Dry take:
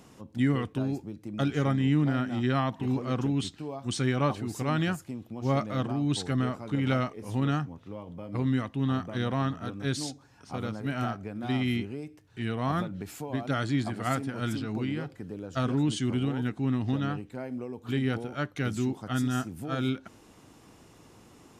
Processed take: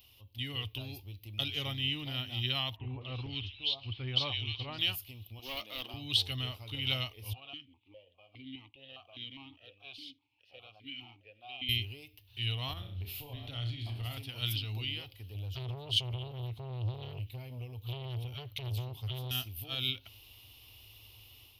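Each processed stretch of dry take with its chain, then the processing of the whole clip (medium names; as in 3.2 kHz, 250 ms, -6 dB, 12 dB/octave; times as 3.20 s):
2.76–4.79 s: low-pass 4.5 kHz 24 dB/octave + bands offset in time lows, highs 250 ms, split 2 kHz
5.39–5.94 s: high-pass 230 Hz 24 dB/octave + hard clipper -27 dBFS
7.33–11.69 s: waveshaping leveller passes 1 + stepped vowel filter 4.9 Hz
12.73–14.17 s: tilt EQ -2 dB/octave + flutter echo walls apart 5.8 m, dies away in 0.36 s + compression 3:1, threshold -31 dBFS
15.34–19.31 s: peaking EQ 130 Hz +13 dB 1.1 oct + compression 4:1, threshold -23 dBFS + transformer saturation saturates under 520 Hz
whole clip: FFT filter 110 Hz 0 dB, 160 Hz -26 dB, 430 Hz -17 dB, 980 Hz -13 dB, 1.6 kHz -20 dB, 2.9 kHz +11 dB, 4.9 kHz +1 dB, 7.5 kHz -16 dB, 13 kHz +15 dB; level rider gain up to 6 dB; trim -4 dB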